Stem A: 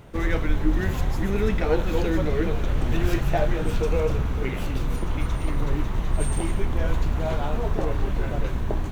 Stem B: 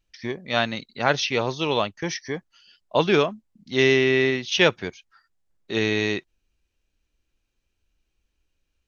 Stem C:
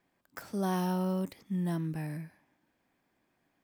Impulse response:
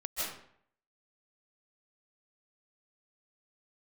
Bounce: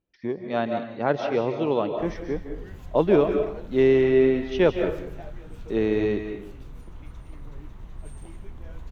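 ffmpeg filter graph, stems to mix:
-filter_complex "[0:a]adelay=1850,volume=-19dB[a];[1:a]bandpass=f=370:t=q:w=0.77:csg=0,volume=-1dB,asplit=2[b][c];[c]volume=-7.5dB[d];[3:a]atrim=start_sample=2205[e];[d][e]afir=irnorm=-1:irlink=0[f];[a][b][f]amix=inputs=3:normalize=0,lowshelf=f=230:g=3.5"

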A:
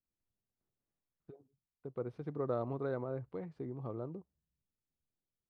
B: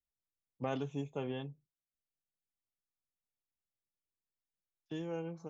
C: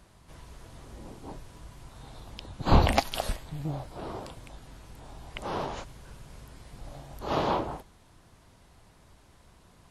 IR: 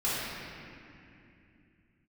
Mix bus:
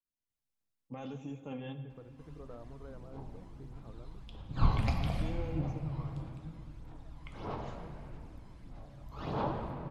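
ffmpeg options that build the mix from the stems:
-filter_complex "[0:a]acompressor=threshold=-48dB:ratio=1.5,volume=-3.5dB[a];[1:a]aecho=1:1:3.7:0.36,alimiter=level_in=9.5dB:limit=-24dB:level=0:latency=1:release=14,volume=-9.5dB,adelay=300,volume=2dB,asplit=2[b][c];[c]volume=-19dB[d];[2:a]aphaser=in_gain=1:out_gain=1:delay=1:decay=0.59:speed=1.6:type=sinusoidal,highshelf=f=7.3k:g=-11,adelay=1900,volume=-12dB,asplit=2[e][f];[f]volume=-9.5dB[g];[3:a]atrim=start_sample=2205[h];[d][g]amix=inputs=2:normalize=0[i];[i][h]afir=irnorm=-1:irlink=0[j];[a][b][e][j]amix=inputs=4:normalize=0,bandreject=f=380:w=12,adynamicequalizer=threshold=0.00355:dfrequency=120:dqfactor=1.5:tfrequency=120:tqfactor=1.5:attack=5:release=100:ratio=0.375:range=3:mode=boostabove:tftype=bell,flanger=delay=1.9:depth=8.1:regen=73:speed=0.73:shape=triangular"

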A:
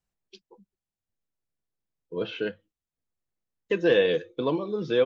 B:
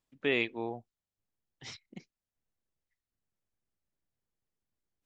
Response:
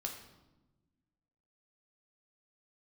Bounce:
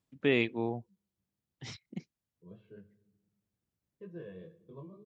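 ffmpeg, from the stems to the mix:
-filter_complex "[0:a]aecho=1:1:1.8:0.88,flanger=delay=16:depth=6.1:speed=2.1,firequalizer=gain_entry='entry(320,0);entry(470,-15);entry(840,-8);entry(1600,-15);entry(2700,-20)':delay=0.05:min_phase=1,adelay=300,volume=-19.5dB,asplit=2[a][b];[b]volume=-6.5dB[c];[1:a]lowshelf=f=100:g=8,volume=-1dB[d];[2:a]atrim=start_sample=2205[e];[c][e]afir=irnorm=-1:irlink=0[f];[a][d][f]amix=inputs=3:normalize=0,highpass=68,equalizer=f=160:w=0.51:g=7"

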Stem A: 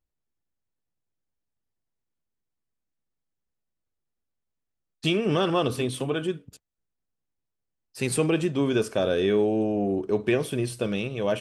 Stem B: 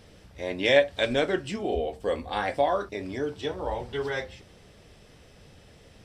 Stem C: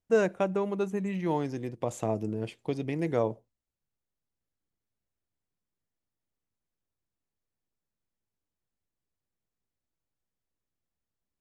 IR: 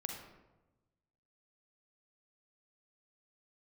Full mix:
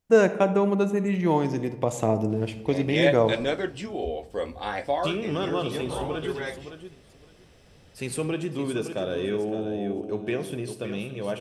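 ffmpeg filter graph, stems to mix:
-filter_complex "[0:a]volume=-8.5dB,asplit=3[a][b][c];[b]volume=-4.5dB[d];[c]volume=-6.5dB[e];[1:a]adelay=2300,volume=-3dB,asplit=2[f][g];[g]volume=-18.5dB[h];[2:a]volume=3dB,asplit=2[i][j];[j]volume=-4dB[k];[3:a]atrim=start_sample=2205[l];[d][h][k]amix=inputs=3:normalize=0[m];[m][l]afir=irnorm=-1:irlink=0[n];[e]aecho=0:1:564|1128|1692:1|0.16|0.0256[o];[a][f][i][n][o]amix=inputs=5:normalize=0"

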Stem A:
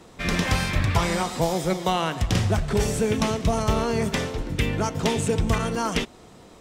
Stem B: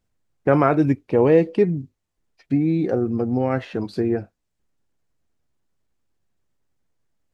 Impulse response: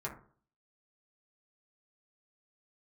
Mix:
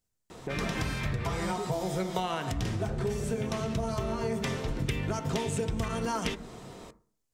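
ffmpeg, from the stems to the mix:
-filter_complex "[0:a]adelay=300,volume=0dB,asplit=2[a][b];[b]volume=-9dB[c];[1:a]bass=f=250:g=-1,treble=f=4k:g=12,acompressor=threshold=-26dB:ratio=6,volume=-11dB,asplit=3[d][e][f];[e]volume=-9dB[g];[f]apad=whole_len=304538[h];[a][h]sidechaincompress=threshold=-47dB:ratio=8:attack=6.3:release=880[i];[2:a]atrim=start_sample=2205[j];[c][g]amix=inputs=2:normalize=0[k];[k][j]afir=irnorm=-1:irlink=0[l];[i][d][l]amix=inputs=3:normalize=0,acompressor=threshold=-27dB:ratio=10"

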